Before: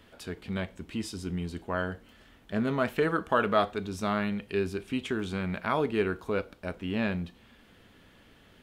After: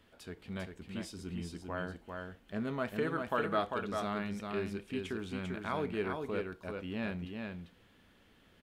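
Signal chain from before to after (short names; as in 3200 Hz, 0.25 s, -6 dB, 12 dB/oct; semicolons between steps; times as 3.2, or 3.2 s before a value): echo 0.396 s -4.5 dB; gain -8 dB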